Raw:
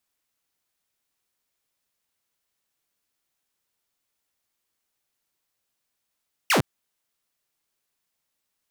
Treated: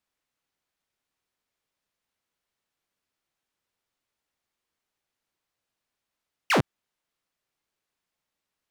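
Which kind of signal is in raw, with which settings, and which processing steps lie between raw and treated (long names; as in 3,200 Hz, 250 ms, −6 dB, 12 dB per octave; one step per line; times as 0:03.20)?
single falling chirp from 3,100 Hz, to 91 Hz, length 0.11 s saw, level −14.5 dB
low-pass filter 3,300 Hz 6 dB per octave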